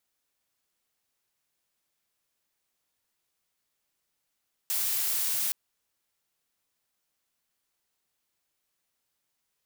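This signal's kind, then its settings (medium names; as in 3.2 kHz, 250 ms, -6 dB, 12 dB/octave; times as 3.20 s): noise blue, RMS -28.5 dBFS 0.82 s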